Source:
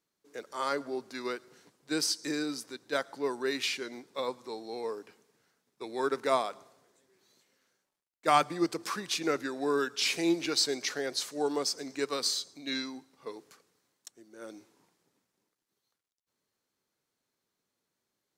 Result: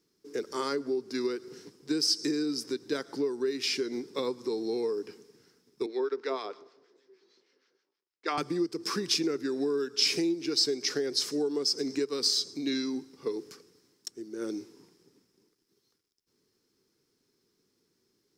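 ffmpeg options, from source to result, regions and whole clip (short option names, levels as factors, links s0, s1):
-filter_complex "[0:a]asettb=1/sr,asplit=3[s0][s1][s2];[s0]atrim=end=5.864[s3];[s1]atrim=start=5.86:end=8.38,asetpts=PTS-STARTPTS,afade=t=in:d=0.004:c=qsin,afade=t=out:st=2.516:d=0.004:c=qsin,lowpass=8200,acrossover=split=320 5100:gain=0.0794 1 0.0708[s4][s5][s6];[s4][s5][s6]amix=inputs=3:normalize=0,acrossover=split=980[s7][s8];[s7]aeval=exprs='val(0)*(1-0.7/2+0.7/2*cos(2*PI*6.4*n/s))':c=same[s9];[s8]aeval=exprs='val(0)*(1-0.7/2-0.7/2*cos(2*PI*6.4*n/s))':c=same[s10];[s9][s10]amix=inputs=2:normalize=0[s11];[s2]atrim=start=8.376[s12];[s3][s11]acrossfade=d=0.004:c1=hsin:c2=qsin[s13];[s13][s12]acrossfade=d=0.004:c1=qsin:c2=hsin,lowshelf=f=500:t=q:w=3:g=6.5,acompressor=threshold=0.0251:ratio=6,equalizer=f=5200:t=o:w=0.29:g=12.5,volume=1.58"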